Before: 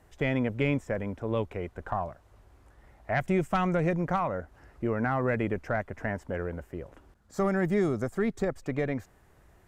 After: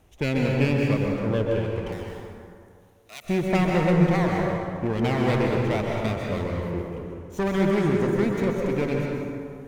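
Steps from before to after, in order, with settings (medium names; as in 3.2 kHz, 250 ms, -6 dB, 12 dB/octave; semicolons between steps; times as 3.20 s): comb filter that takes the minimum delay 0.32 ms; 1.92–3.25 s: differentiator; plate-style reverb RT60 2.3 s, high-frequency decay 0.5×, pre-delay 115 ms, DRR -1 dB; trim +2 dB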